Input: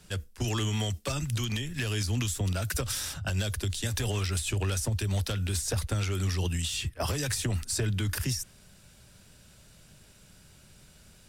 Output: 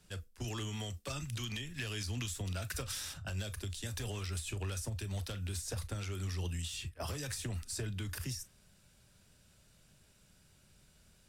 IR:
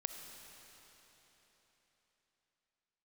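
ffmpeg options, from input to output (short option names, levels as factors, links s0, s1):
-filter_complex "[0:a]asettb=1/sr,asplit=3[s0][s1][s2];[s0]atrim=end=1.104[s3];[s1]atrim=start=1.1:end=3.14,asetpts=PTS-STARTPTS,afade=t=in:d=0.004:c=qsin,afade=t=out:st=2.036:d=0.004:c=qsin,equalizer=f=2900:t=o:w=2.5:g=3.5[s4];[s2]atrim=start=3.136[s5];[s3][s4]acrossfade=d=0.004:c1=hsin:c2=qsin[s6];[s6][s5]acrossfade=d=0.004:c1=qsin:c2=hsin[s7];[1:a]atrim=start_sample=2205,atrim=end_sample=3969,asetrate=83790,aresample=44100[s8];[s7][s8]afir=irnorm=-1:irlink=0,volume=0.794"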